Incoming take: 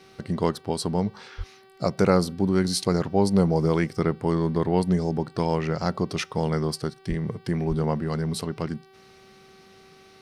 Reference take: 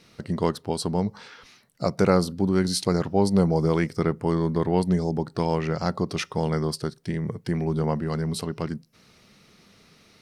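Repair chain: de-hum 383.7 Hz, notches 13; 1.37–1.49 s: high-pass 140 Hz 24 dB/octave; 7.08–7.20 s: high-pass 140 Hz 24 dB/octave; 7.68–7.80 s: high-pass 140 Hz 24 dB/octave

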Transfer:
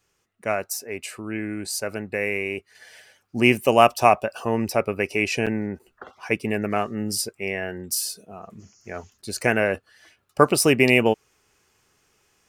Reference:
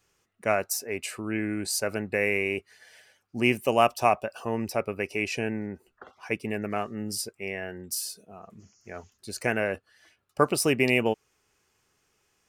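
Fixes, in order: interpolate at 5.46/5.79/9.22 s, 6.5 ms; trim 0 dB, from 2.75 s -6 dB

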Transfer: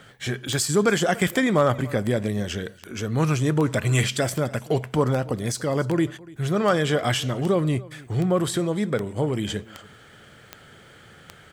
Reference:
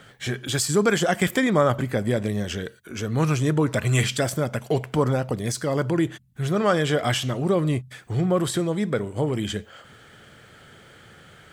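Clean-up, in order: clip repair -10 dBFS; de-click; inverse comb 289 ms -21.5 dB

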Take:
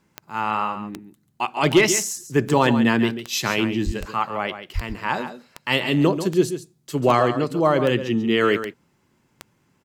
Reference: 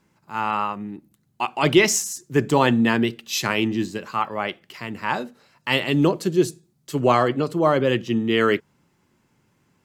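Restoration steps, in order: clip repair -6.5 dBFS; de-click; de-plosive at 3.85/4.74 s; inverse comb 139 ms -10.5 dB

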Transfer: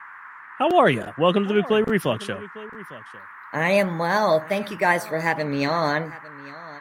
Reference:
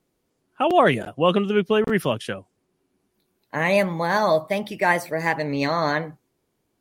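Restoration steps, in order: noise print and reduce 30 dB; inverse comb 853 ms -19 dB

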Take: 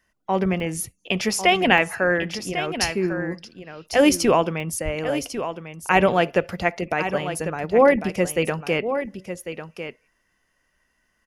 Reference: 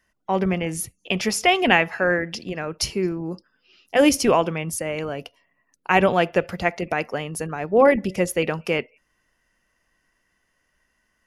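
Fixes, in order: 4.84–4.96 s: high-pass 140 Hz 24 dB/octave; interpolate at 0.60/0.99/1.78/4.60 s, 1.4 ms; inverse comb 1098 ms -10 dB

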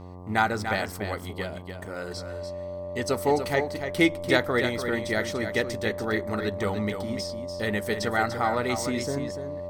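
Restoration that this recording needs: de-hum 90.2 Hz, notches 13; band-stop 590 Hz, Q 30; inverse comb 292 ms -8 dB

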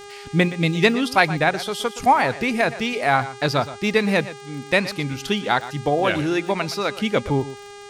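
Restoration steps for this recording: de-click; de-hum 406 Hz, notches 23; inverse comb 120 ms -15 dB

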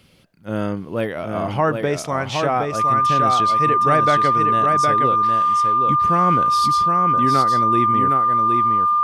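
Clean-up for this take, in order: band-stop 1.2 kHz, Q 30; inverse comb 765 ms -4.5 dB

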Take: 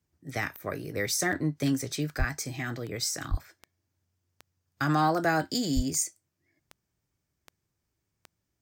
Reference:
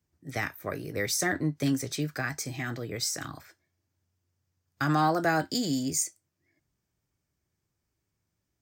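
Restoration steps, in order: de-click; de-plosive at 2.18/3.30/5.75 s

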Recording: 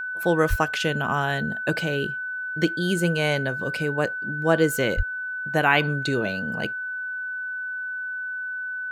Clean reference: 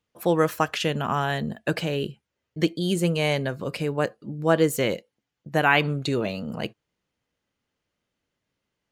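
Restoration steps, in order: band-stop 1.5 kHz, Q 30; de-plosive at 0.49/4.96 s

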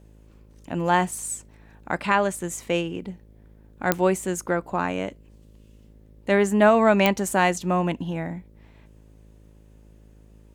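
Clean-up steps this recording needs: de-click; de-hum 53.2 Hz, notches 11

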